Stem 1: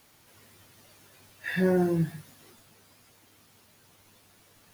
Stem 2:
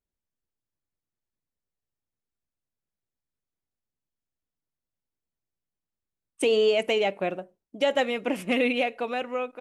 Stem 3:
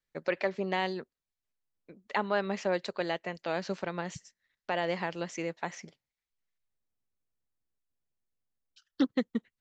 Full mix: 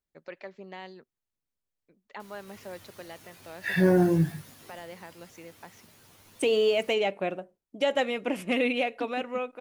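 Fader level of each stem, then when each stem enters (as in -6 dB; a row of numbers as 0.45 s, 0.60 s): +3.0 dB, -2.0 dB, -12.0 dB; 2.20 s, 0.00 s, 0.00 s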